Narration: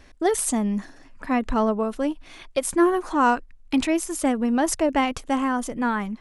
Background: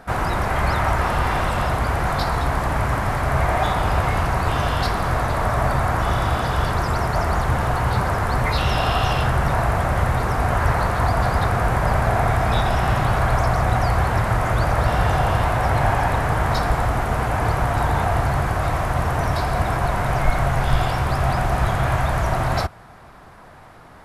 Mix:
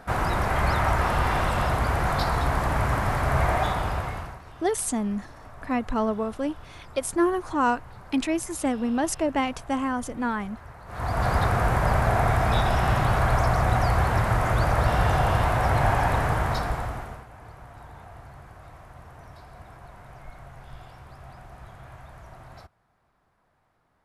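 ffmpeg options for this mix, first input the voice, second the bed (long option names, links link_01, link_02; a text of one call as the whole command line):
ffmpeg -i stem1.wav -i stem2.wav -filter_complex "[0:a]adelay=4400,volume=-3.5dB[link_01];[1:a]volume=19.5dB,afade=type=out:start_time=3.48:duration=0.93:silence=0.0749894,afade=type=in:start_time=10.86:duration=0.46:silence=0.0749894,afade=type=out:start_time=16.22:duration=1.03:silence=0.0794328[link_02];[link_01][link_02]amix=inputs=2:normalize=0" out.wav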